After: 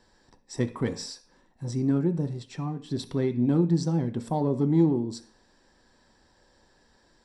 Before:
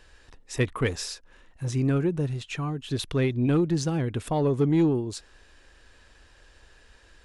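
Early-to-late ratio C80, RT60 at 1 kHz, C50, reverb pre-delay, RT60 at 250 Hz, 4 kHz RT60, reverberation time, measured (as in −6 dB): 19.5 dB, 0.45 s, 15.0 dB, 3 ms, 0.55 s, can't be measured, 0.45 s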